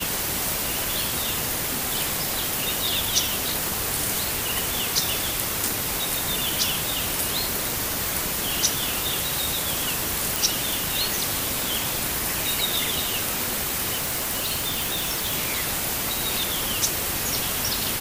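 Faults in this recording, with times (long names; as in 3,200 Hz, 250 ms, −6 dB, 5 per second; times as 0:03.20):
0:03.67: click
0:05.68: click
0:10.36: click
0:13.94–0:15.35: clipping −21.5 dBFS
0:16.09: click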